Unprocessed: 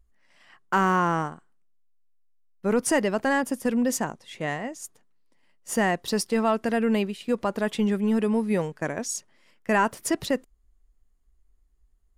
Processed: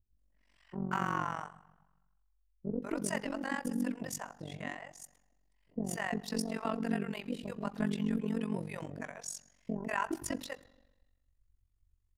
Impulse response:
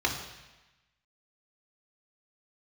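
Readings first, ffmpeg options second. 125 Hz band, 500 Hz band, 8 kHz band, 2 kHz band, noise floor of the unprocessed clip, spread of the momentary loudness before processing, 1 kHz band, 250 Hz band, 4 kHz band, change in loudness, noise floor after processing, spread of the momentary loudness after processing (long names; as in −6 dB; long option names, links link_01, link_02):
−7.5 dB, −14.5 dB, −11.0 dB, −11.0 dB, −64 dBFS, 10 LU, −12.0 dB, −10.0 dB, −10.5 dB, −11.5 dB, −74 dBFS, 11 LU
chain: -filter_complex "[0:a]acrossover=split=530[link_01][link_02];[link_02]adelay=190[link_03];[link_01][link_03]amix=inputs=2:normalize=0,asplit=2[link_04][link_05];[1:a]atrim=start_sample=2205,lowshelf=frequency=260:gain=11[link_06];[link_05][link_06]afir=irnorm=-1:irlink=0,volume=-22dB[link_07];[link_04][link_07]amix=inputs=2:normalize=0,tremolo=f=46:d=0.919,volume=-7dB"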